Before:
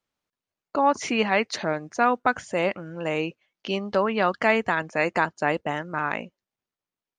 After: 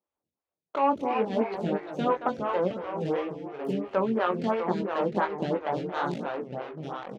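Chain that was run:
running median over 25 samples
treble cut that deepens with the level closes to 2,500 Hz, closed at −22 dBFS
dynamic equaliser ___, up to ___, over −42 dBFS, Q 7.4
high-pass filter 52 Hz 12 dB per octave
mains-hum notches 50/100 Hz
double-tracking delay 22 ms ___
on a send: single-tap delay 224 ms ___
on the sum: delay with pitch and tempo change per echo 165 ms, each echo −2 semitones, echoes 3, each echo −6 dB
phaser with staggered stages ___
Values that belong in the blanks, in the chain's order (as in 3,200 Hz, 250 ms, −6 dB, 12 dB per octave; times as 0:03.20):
680 Hz, −5 dB, −5 dB, −13 dB, 2.9 Hz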